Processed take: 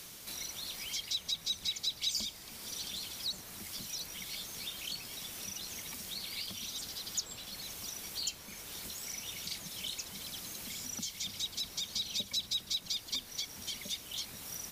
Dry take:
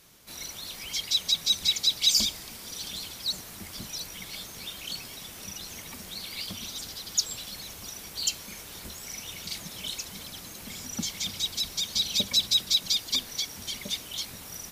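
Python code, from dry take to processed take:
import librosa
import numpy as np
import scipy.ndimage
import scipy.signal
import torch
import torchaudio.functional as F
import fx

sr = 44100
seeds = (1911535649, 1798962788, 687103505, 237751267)

y = fx.band_squash(x, sr, depth_pct=70)
y = y * librosa.db_to_amplitude(-8.0)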